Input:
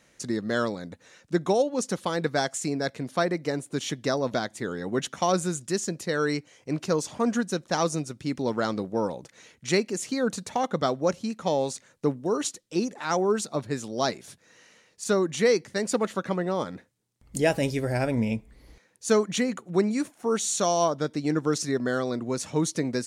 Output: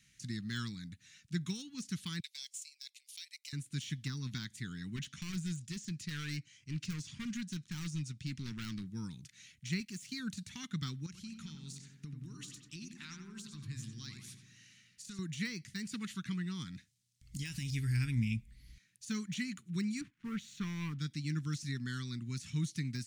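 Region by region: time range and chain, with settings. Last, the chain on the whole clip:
0:02.20–0:03.53: Butterworth high-pass 2,400 Hz + high-shelf EQ 6,300 Hz +9.5 dB + transient designer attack 0 dB, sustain −11 dB
0:04.96–0:08.86: low-pass filter 8,100 Hz + gain into a clipping stage and back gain 24.5 dB
0:09.80–0:10.20: mu-law and A-law mismatch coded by A + high-pass filter 41 Hz
0:11.06–0:15.19: downward compressor 4 to 1, threshold −34 dBFS + feedback echo with a low-pass in the loop 89 ms, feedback 65%, low-pass 2,300 Hz, level −5 dB
0:16.74–0:17.75: parametric band 5,700 Hz +8 dB 1.6 octaves + downward compressor 4 to 1, threshold −27 dBFS
0:20.01–0:20.99: low-pass filter 1,600 Hz + leveller curve on the samples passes 1
whole clip: Chebyshev band-stop filter 150–2,500 Hz, order 2; de-essing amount 100%; parametric band 130 Hz +2 dB; level −3 dB

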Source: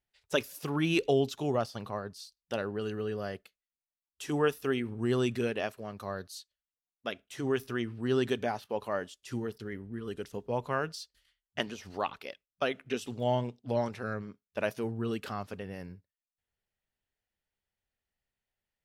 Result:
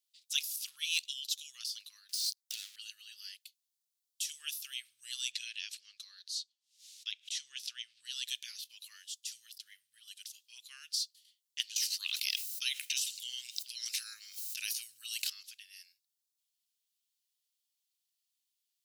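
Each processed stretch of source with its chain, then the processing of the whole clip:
0:02.09–0:02.76: high-shelf EQ 3,600 Hz +7.5 dB + downward compressor 3 to 1, threshold −48 dBFS + leveller curve on the samples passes 5
0:05.31–0:08.05: low-pass filter 6,200 Hz + parametric band 490 Hz +8 dB 0.33 octaves + background raised ahead of every attack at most 140 dB per second
0:11.76–0:15.30: high-shelf EQ 5,200 Hz +8.5 dB + notch filter 3,400 Hz, Q 11 + envelope flattener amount 70%
whole clip: inverse Chebyshev high-pass filter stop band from 800 Hz, stop band 70 dB; de-essing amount 85%; level +10 dB

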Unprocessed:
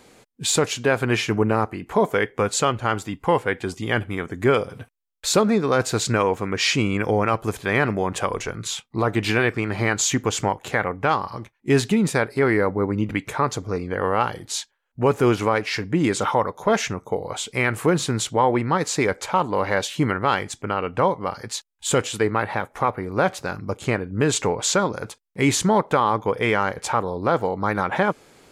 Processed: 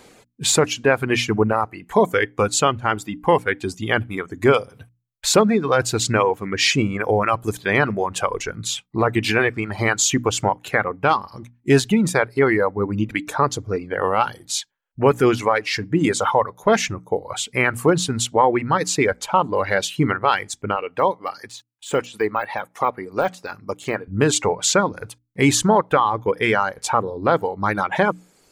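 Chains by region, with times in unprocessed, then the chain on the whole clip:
0:20.76–0:24.08: high-pass filter 370 Hz 6 dB per octave + notch filter 1,500 Hz, Q 19 + de-essing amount 95%
whole clip: reverb reduction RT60 1.6 s; mains-hum notches 60/120/180/240/300 Hz; level +3.5 dB

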